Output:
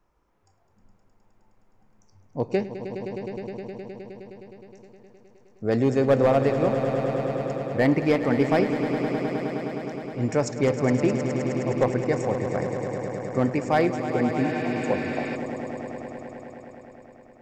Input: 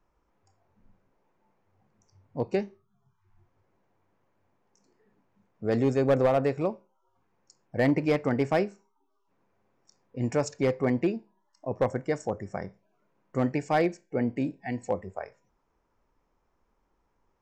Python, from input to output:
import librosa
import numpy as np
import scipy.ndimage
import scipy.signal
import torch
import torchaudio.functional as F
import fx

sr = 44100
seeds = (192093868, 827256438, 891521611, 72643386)

y = fx.echo_swell(x, sr, ms=104, loudest=5, wet_db=-11.5)
y = fx.spec_repair(y, sr, seeds[0], start_s=14.45, length_s=0.88, low_hz=1100.0, high_hz=5600.0, source='before')
y = y * librosa.db_to_amplitude(3.0)